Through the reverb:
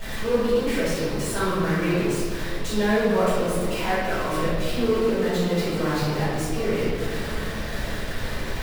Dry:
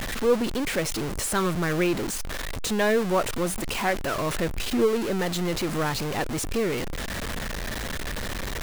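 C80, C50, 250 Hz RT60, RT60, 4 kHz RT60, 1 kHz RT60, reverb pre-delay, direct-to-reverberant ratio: 0.0 dB, −3.0 dB, 2.9 s, 2.4 s, 1.3 s, 1.9 s, 4 ms, −13.5 dB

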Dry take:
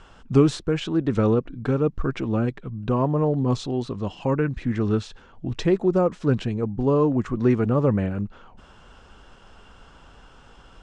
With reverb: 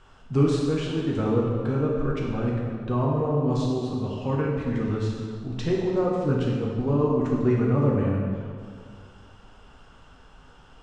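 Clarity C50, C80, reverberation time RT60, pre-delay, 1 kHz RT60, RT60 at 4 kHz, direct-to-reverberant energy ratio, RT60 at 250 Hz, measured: 0.0 dB, 2.0 dB, 1.9 s, 5 ms, 1.9 s, 1.4 s, −3.5 dB, 2.2 s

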